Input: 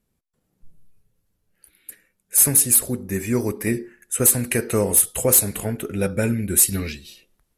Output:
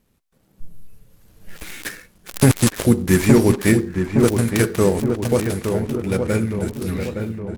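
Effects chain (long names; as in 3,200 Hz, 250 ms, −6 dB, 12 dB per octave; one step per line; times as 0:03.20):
gap after every zero crossing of 0.093 ms
source passing by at 0:01.67, 14 m/s, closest 2.1 metres
on a send: feedback echo with a low-pass in the loop 866 ms, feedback 57%, low-pass 1,600 Hz, level −6 dB
on the sum: pitch-shifted copies added −4 semitones −15 dB
boost into a limiter +30.5 dB
level −1 dB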